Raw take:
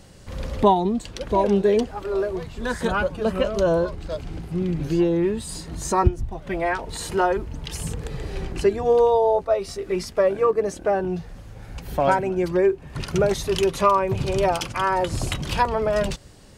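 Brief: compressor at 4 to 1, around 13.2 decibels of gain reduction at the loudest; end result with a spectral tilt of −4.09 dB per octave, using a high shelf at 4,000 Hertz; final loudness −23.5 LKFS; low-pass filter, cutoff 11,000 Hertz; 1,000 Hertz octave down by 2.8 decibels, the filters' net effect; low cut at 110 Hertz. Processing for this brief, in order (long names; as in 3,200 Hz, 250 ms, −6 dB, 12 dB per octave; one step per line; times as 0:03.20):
high-pass filter 110 Hz
low-pass filter 11,000 Hz
parametric band 1,000 Hz −4 dB
high-shelf EQ 4,000 Hz +8.5 dB
downward compressor 4 to 1, threshold −31 dBFS
level +10 dB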